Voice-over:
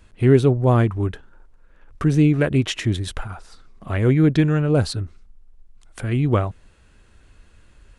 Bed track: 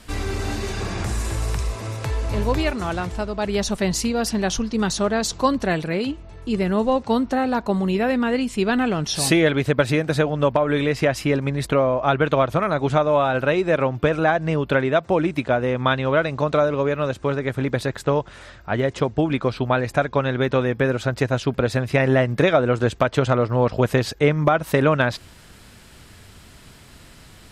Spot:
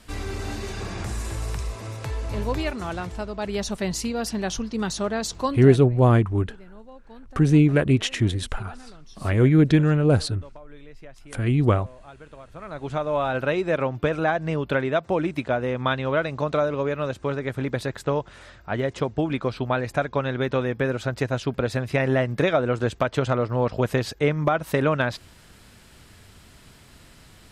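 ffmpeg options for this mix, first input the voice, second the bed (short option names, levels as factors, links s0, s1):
-filter_complex "[0:a]adelay=5350,volume=0.944[s0];[1:a]volume=7.5,afade=t=out:st=5.4:d=0.44:silence=0.0841395,afade=t=in:st=12.5:d=0.84:silence=0.0749894[s1];[s0][s1]amix=inputs=2:normalize=0"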